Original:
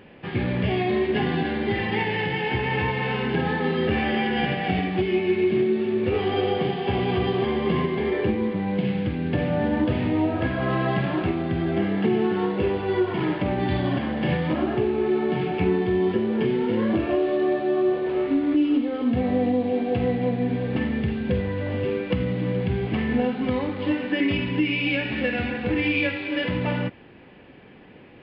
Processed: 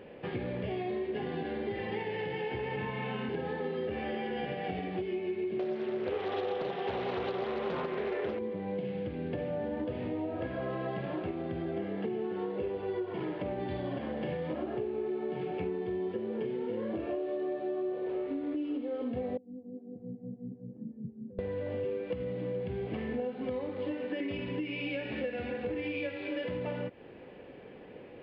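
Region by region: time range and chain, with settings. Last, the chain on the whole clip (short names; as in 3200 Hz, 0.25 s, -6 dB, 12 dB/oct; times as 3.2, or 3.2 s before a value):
2.76–3.29 speaker cabinet 110–4500 Hz, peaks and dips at 140 Hz +6 dB, 210 Hz +9 dB, 500 Hz -9 dB + flutter echo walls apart 4.9 m, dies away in 0.29 s
5.59–8.39 bell 1600 Hz +11.5 dB 2.8 oct + notch 2200 Hz + Doppler distortion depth 0.47 ms
19.37–21.39 Butterworth band-pass 160 Hz, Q 1.6 + tilt +2 dB/oct + photocell phaser 5.3 Hz
whole clip: bell 500 Hz +10.5 dB 0.95 oct; compressor 4:1, threshold -28 dBFS; gain -6 dB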